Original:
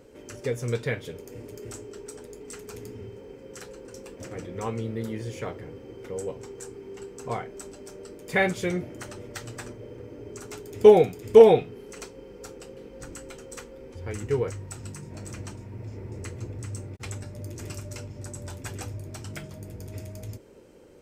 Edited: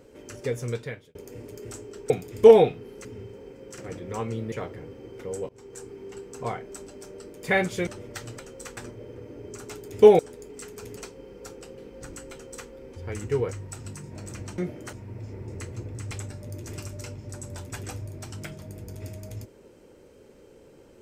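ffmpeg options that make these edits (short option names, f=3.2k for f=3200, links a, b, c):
-filter_complex "[0:a]asplit=15[a][b][c][d][e][f][g][h][i][j][k][l][m][n][o];[a]atrim=end=1.15,asetpts=PTS-STARTPTS,afade=t=out:st=0.58:d=0.57[p];[b]atrim=start=1.15:end=2.102,asetpts=PTS-STARTPTS,afade=t=in:d=0.004:c=hsin[q];[c]atrim=start=11.008:end=11.962[r];[d]atrim=start=2.878:end=3.612[s];[e]atrim=start=4.248:end=4.992[t];[f]atrim=start=5.368:end=6.34,asetpts=PTS-STARTPTS,afade=t=out:st=0.968:d=0.004:c=hsin:silence=0.0841395[u];[g]atrim=start=6.34:end=8.722,asetpts=PTS-STARTPTS,afade=t=in:d=0.45:c=qsin:silence=0.0841395[v];[h]atrim=start=9.068:end=9.592[w];[i]atrim=start=13.308:end=13.692[x];[j]atrim=start=9.588:end=11.012[y];[k]atrim=start=2.098:end=2.882[z];[l]atrim=start=11.958:end=15.572[aa];[m]atrim=start=8.718:end=9.072[ab];[n]atrim=start=15.568:end=16.752[ac];[o]atrim=start=17.028[ad];[p][q]concat=n=2:v=0:a=1[ae];[ae][r]acrossfade=d=0.004:c1=hsin:c2=hsin[af];[af][s]acrossfade=d=0.004:c1=hsin:c2=hsin[ag];[ag][t]acrossfade=d=0.004:c1=hsin:c2=hsin[ah];[u][v]concat=n=2:v=0:a=1[ai];[ah][ai]acrossfade=d=0.004:c1=hsin:c2=hsin[aj];[aj][w]acrossfade=d=0.004:c1=hsin:c2=hsin[ak];[ak][x]acrossfade=d=0.004:c1=hsin:c2=hsin[al];[al][y]acrossfade=d=0.004:c1=hsin:c2=hsin[am];[am][z]acrossfade=d=0.004:c1=hsin:c2=hsin[an];[an][aa]acrossfade=d=0.004:c1=hsin:c2=hsin[ao];[ao][ab]acrossfade=d=0.004:c1=hsin:c2=hsin[ap];[ap][ac]acrossfade=d=0.004:c1=hsin:c2=hsin[aq];[aq][ad]acrossfade=d=0.004:c1=hsin:c2=hsin"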